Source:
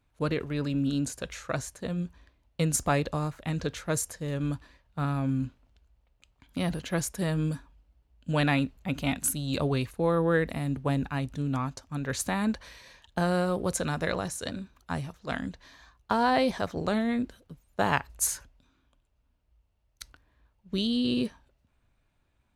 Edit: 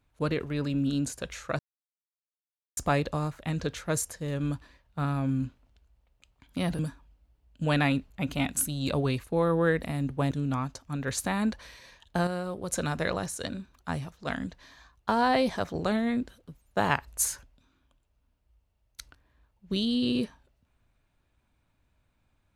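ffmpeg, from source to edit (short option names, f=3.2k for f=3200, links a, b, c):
-filter_complex "[0:a]asplit=7[a][b][c][d][e][f][g];[a]atrim=end=1.59,asetpts=PTS-STARTPTS,afade=t=out:st=1.586:d=0.004:c=hsin[h];[b]atrim=start=1.59:end=2.77,asetpts=PTS-STARTPTS,volume=0[i];[c]atrim=start=2.77:end=6.792,asetpts=PTS-STARTPTS,afade=t=in:d=0.004:c=hsin[j];[d]atrim=start=7.458:end=10.982[k];[e]atrim=start=11.328:end=13.292[l];[f]atrim=start=13.288:end=13.742,asetpts=PTS-STARTPTS,volume=-6.5dB[m];[g]atrim=start=13.738[n];[h][i][j]concat=n=3:v=0:a=1[o];[o][k]acrossfade=d=0.004:c1=hsin:c2=hsin[p];[p][l]acrossfade=d=0.004:c1=hsin:c2=hsin[q];[q][m]acrossfade=d=0.004:c1=hsin:c2=hsin[r];[r][n]acrossfade=d=0.004:c1=hsin:c2=hsin"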